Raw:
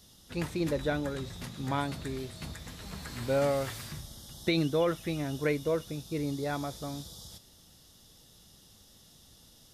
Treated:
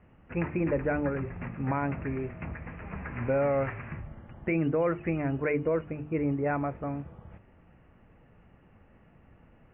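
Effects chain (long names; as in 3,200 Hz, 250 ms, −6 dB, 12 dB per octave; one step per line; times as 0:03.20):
Butterworth low-pass 2,600 Hz 96 dB per octave
mains-hum notches 50/100/150/200/250/300/350/400/450 Hz
brickwall limiter −24 dBFS, peak gain reduction 6 dB
level +5 dB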